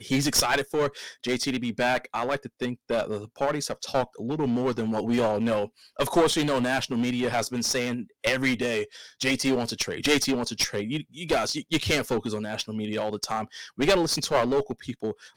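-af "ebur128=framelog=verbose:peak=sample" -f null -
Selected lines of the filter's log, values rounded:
Integrated loudness:
  I:         -26.5 LUFS
  Threshold: -36.5 LUFS
Loudness range:
  LRA:         2.9 LU
  Threshold: -46.7 LUFS
  LRA low:   -28.4 LUFS
  LRA high:  -25.5 LUFS
Sample peak:
  Peak:       -6.9 dBFS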